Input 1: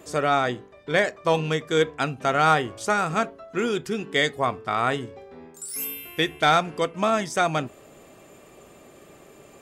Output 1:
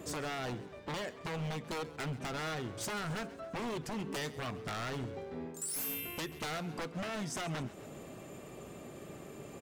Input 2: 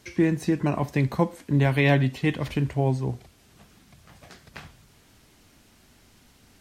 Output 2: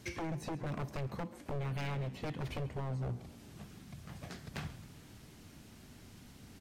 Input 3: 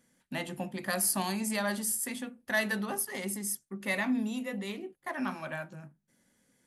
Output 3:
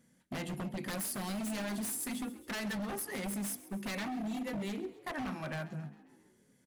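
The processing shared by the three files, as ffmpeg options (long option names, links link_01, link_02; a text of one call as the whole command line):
ffmpeg -i in.wav -filter_complex "[0:a]equalizer=frequency=140:width=0.56:gain=8,acompressor=threshold=-28dB:ratio=12,aeval=exprs='0.0299*(abs(mod(val(0)/0.0299+3,4)-2)-1)':channel_layout=same,asplit=2[link_01][link_02];[link_02]asplit=5[link_03][link_04][link_05][link_06][link_07];[link_03]adelay=134,afreqshift=53,volume=-18dB[link_08];[link_04]adelay=268,afreqshift=106,volume=-22.7dB[link_09];[link_05]adelay=402,afreqshift=159,volume=-27.5dB[link_10];[link_06]adelay=536,afreqshift=212,volume=-32.2dB[link_11];[link_07]adelay=670,afreqshift=265,volume=-36.9dB[link_12];[link_08][link_09][link_10][link_11][link_12]amix=inputs=5:normalize=0[link_13];[link_01][link_13]amix=inputs=2:normalize=0,volume=-2dB" out.wav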